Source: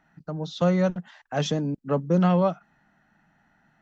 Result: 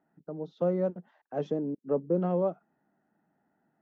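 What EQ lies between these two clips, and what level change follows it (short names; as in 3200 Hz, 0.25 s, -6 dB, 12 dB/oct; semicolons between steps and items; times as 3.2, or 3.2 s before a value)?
band-pass 400 Hz, Q 1.8; 0.0 dB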